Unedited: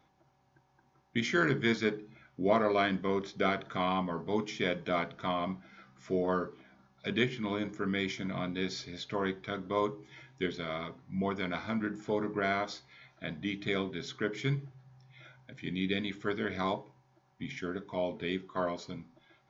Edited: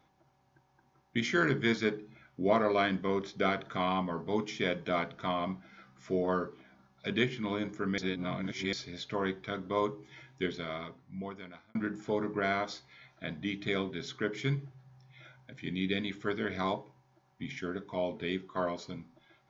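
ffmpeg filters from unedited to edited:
-filter_complex "[0:a]asplit=4[s0][s1][s2][s3];[s0]atrim=end=7.982[s4];[s1]atrim=start=7.978:end=8.732,asetpts=PTS-STARTPTS,areverse[s5];[s2]atrim=start=8.728:end=11.75,asetpts=PTS-STARTPTS,afade=t=out:st=1.792:d=1.23[s6];[s3]atrim=start=11.75,asetpts=PTS-STARTPTS,afade=t=in:d=0.004:c=hsin[s7];[s4][s5]acrossfade=d=0.004:c1=hsin:c2=hsin[s8];[s6][s7]concat=n=2:v=0:a=1[s9];[s8][s9]acrossfade=d=0.004:c1=hsin:c2=hsin"

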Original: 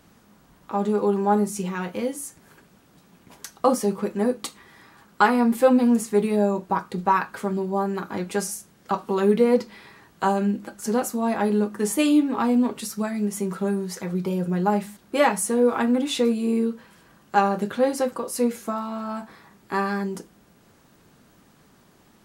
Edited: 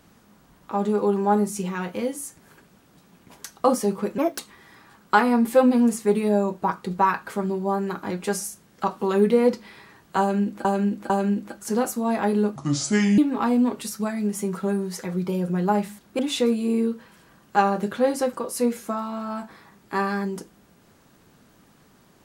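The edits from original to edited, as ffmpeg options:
-filter_complex "[0:a]asplit=8[s0][s1][s2][s3][s4][s5][s6][s7];[s0]atrim=end=4.184[s8];[s1]atrim=start=4.18:end=4.46,asetpts=PTS-STARTPTS,asetrate=59535,aresample=44100[s9];[s2]atrim=start=4.456:end=10.722[s10];[s3]atrim=start=10.268:end=10.722[s11];[s4]atrim=start=10.268:end=11.734[s12];[s5]atrim=start=11.73:end=12.16,asetpts=PTS-STARTPTS,asetrate=30429,aresample=44100[s13];[s6]atrim=start=12.156:end=15.172[s14];[s7]atrim=start=15.978[s15];[s8][s9]acrossfade=d=0.004:c1=hsin:c2=hsin[s16];[s16][s10]acrossfade=d=0.004:c1=hsin:c2=hsin[s17];[s17][s11]acrossfade=d=0.004:c1=hsin:c2=hsin[s18];[s18][s12]acrossfade=d=0.004:c1=hsin:c2=hsin[s19];[s19][s13]acrossfade=d=0.004:c1=hsin:c2=hsin[s20];[s20][s14]acrossfade=d=0.004:c1=hsin:c2=hsin[s21];[s21][s15]acrossfade=d=0.004:c1=hsin:c2=hsin"

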